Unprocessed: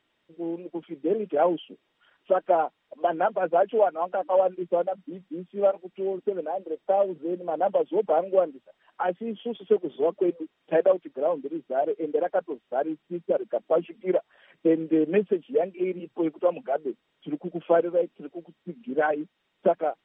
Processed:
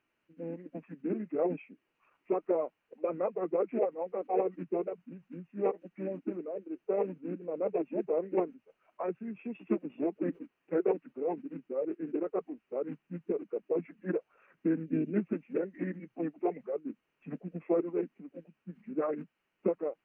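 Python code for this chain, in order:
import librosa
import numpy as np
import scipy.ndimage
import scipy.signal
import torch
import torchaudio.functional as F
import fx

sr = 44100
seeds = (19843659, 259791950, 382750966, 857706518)

y = fx.spec_box(x, sr, start_s=14.85, length_s=0.32, low_hz=670.0, high_hz=2700.0, gain_db=-10)
y = fx.formant_shift(y, sr, semitones=-4)
y = y * librosa.db_to_amplitude(-7.5)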